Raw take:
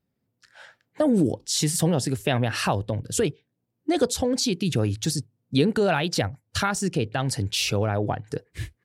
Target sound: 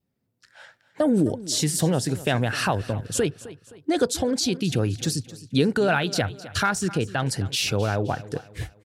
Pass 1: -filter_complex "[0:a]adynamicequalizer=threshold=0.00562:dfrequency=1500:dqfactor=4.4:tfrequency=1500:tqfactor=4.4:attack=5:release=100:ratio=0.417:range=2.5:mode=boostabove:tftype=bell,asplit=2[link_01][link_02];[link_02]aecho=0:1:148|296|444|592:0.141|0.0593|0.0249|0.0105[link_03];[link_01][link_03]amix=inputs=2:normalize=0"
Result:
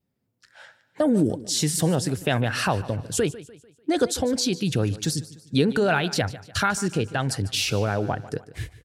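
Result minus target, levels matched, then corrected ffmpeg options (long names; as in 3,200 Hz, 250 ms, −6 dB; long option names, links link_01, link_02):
echo 112 ms early
-filter_complex "[0:a]adynamicequalizer=threshold=0.00562:dfrequency=1500:dqfactor=4.4:tfrequency=1500:tqfactor=4.4:attack=5:release=100:ratio=0.417:range=2.5:mode=boostabove:tftype=bell,asplit=2[link_01][link_02];[link_02]aecho=0:1:260|520|780|1040:0.141|0.0593|0.0249|0.0105[link_03];[link_01][link_03]amix=inputs=2:normalize=0"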